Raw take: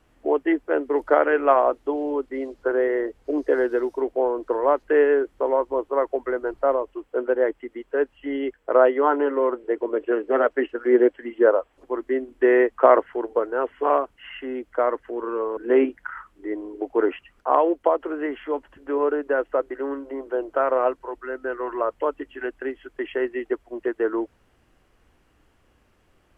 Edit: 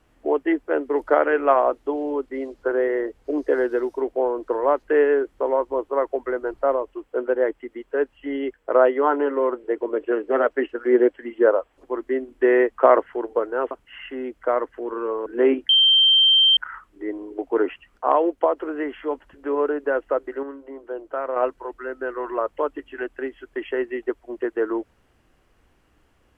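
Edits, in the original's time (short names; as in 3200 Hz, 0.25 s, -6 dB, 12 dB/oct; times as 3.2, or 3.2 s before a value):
13.71–14.02 cut
16 add tone 3140 Hz -12 dBFS 0.88 s
19.86–20.79 gain -6 dB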